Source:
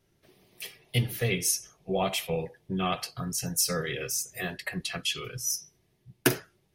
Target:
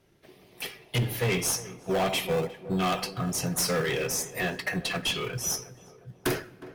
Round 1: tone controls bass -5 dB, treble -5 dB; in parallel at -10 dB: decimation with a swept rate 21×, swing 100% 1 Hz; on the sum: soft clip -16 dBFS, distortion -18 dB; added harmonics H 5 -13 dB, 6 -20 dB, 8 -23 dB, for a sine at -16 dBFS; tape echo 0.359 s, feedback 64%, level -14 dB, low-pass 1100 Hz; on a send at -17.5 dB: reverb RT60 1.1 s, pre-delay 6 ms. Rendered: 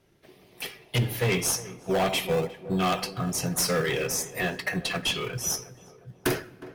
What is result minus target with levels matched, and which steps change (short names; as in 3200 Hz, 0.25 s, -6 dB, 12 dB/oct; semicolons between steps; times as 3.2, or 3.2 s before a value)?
soft clip: distortion -9 dB
change: soft clip -27 dBFS, distortion -9 dB